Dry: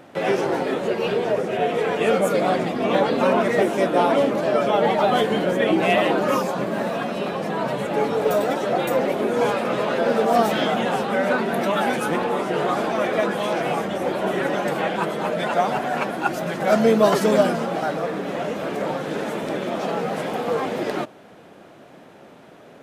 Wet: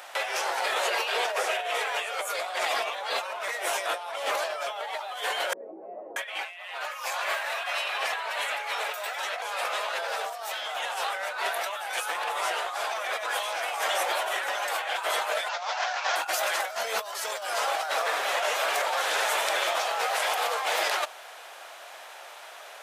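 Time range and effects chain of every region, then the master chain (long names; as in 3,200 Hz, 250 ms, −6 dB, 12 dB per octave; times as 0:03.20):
0:05.53–0:09.42: parametric band 2,200 Hz +8 dB 1.4 octaves + multiband delay without the direct sound lows, highs 630 ms, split 350 Hz
0:15.49–0:16.16: variable-slope delta modulation 32 kbit/s + high-pass filter 530 Hz
whole clip: high-pass filter 710 Hz 24 dB per octave; high-shelf EQ 2,900 Hz +9.5 dB; compressor whose output falls as the input rises −31 dBFS, ratio −1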